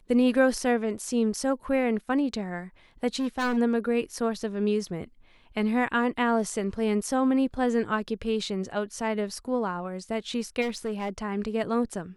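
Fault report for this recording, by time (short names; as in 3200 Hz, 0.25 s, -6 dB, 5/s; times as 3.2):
3.15–3.58 clipped -23.5 dBFS
10.61–11.1 clipped -25.5 dBFS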